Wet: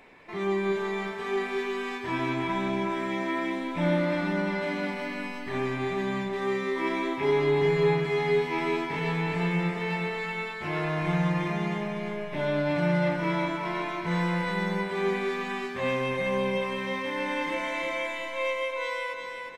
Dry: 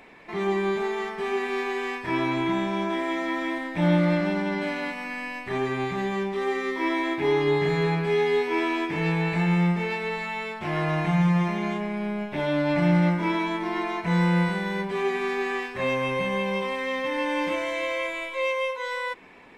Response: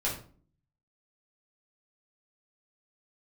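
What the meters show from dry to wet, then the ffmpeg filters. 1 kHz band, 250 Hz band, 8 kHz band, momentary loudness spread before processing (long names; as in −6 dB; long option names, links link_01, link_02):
−2.5 dB, −4.0 dB, can't be measured, 8 LU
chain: -filter_complex "[0:a]aecho=1:1:359|718|1077|1436|1795:0.562|0.247|0.109|0.0479|0.0211,asplit=2[link_01][link_02];[1:a]atrim=start_sample=2205[link_03];[link_02][link_03]afir=irnorm=-1:irlink=0,volume=-15dB[link_04];[link_01][link_04]amix=inputs=2:normalize=0,volume=-5dB"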